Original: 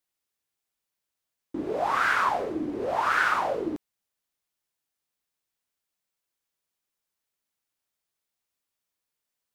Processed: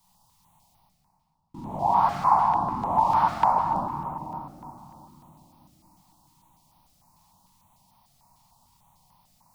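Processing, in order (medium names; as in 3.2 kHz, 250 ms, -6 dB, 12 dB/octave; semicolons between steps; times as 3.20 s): in parallel at -10.5 dB: word length cut 6-bit, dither none; on the sum: peaking EQ 160 Hz -8.5 dB 0.42 oct; reverse; upward compressor, threshold -33 dBFS; reverse; FFT filter 110 Hz 0 dB, 160 Hz +11 dB, 290 Hz -14 dB, 450 Hz -25 dB, 920 Hz +8 dB, 1.5 kHz -24 dB, 4.8 kHz -10 dB, 14 kHz -13 dB; simulated room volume 160 m³, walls hard, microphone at 0.73 m; step-sequenced notch 6.7 Hz 430–7400 Hz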